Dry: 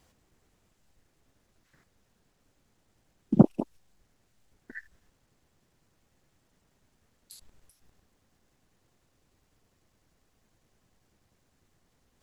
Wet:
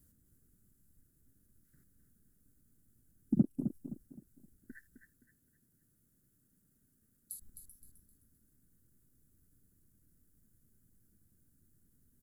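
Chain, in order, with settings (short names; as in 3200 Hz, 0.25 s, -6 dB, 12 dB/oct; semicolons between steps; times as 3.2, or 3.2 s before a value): EQ curve 260 Hz 0 dB, 900 Hz -28 dB, 1500 Hz -10 dB, 2400 Hz -23 dB, 6000 Hz -11 dB, 11000 Hz +8 dB; compressor 2.5:1, threshold -28 dBFS, peak gain reduction 12.5 dB; 4.76–7.33 low shelf 72 Hz -12 dB; feedback echo 0.26 s, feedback 35%, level -8.5 dB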